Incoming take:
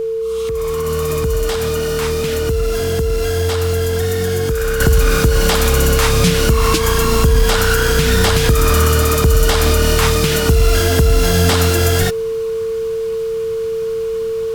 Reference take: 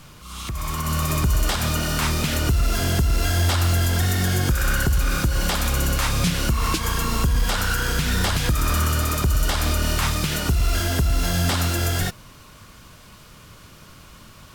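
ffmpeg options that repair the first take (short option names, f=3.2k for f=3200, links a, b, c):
-af "bandreject=f=450:w=30,asetnsamples=n=441:p=0,asendcmd='4.8 volume volume -7.5dB',volume=0dB"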